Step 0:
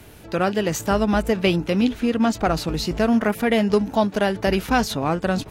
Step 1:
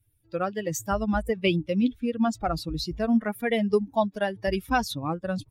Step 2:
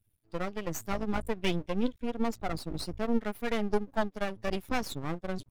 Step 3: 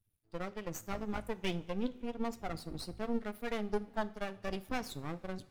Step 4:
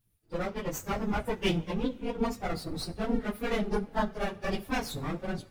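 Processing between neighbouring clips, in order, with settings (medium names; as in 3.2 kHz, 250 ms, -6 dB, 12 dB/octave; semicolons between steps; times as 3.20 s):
expander on every frequency bin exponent 2; trim -1.5 dB
half-wave rectifier; trim -2 dB
two-slope reverb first 0.46 s, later 4.2 s, from -19 dB, DRR 13.5 dB; trim -6 dB
phase randomisation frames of 50 ms; trim +7 dB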